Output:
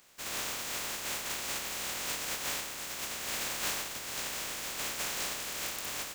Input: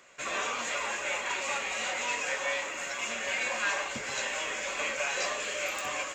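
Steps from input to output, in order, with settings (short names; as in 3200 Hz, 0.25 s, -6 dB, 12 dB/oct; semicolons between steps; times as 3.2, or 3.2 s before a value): spectral contrast lowered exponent 0.18; gain -3.5 dB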